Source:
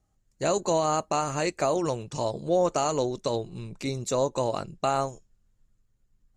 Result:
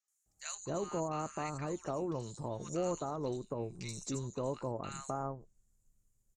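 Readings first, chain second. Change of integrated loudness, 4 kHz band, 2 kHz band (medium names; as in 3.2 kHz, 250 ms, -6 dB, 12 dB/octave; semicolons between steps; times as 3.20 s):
-11.5 dB, -14.0 dB, -12.0 dB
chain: resonant high shelf 5.1 kHz +12.5 dB, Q 1.5; three bands offset in time mids, highs, lows 80/260 ms, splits 1.4/5.2 kHz; low-pass that closes with the level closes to 2.5 kHz, closed at -24.5 dBFS; dynamic bell 640 Hz, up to -7 dB, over -39 dBFS, Q 1.2; trim -6.5 dB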